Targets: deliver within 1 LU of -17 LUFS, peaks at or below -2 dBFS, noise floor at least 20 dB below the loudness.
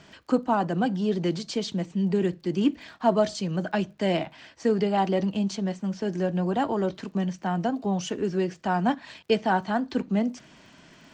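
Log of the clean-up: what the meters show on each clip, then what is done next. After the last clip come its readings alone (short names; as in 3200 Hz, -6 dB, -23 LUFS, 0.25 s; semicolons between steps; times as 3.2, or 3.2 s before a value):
ticks 33/s; loudness -27.0 LUFS; peak -9.0 dBFS; loudness target -17.0 LUFS
-> de-click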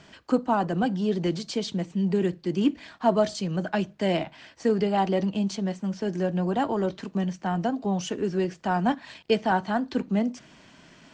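ticks 0.090/s; loudness -27.0 LUFS; peak -9.0 dBFS; loudness target -17.0 LUFS
-> gain +10 dB; limiter -2 dBFS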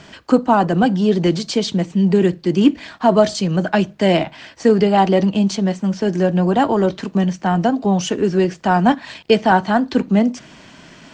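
loudness -17.0 LUFS; peak -2.0 dBFS; noise floor -44 dBFS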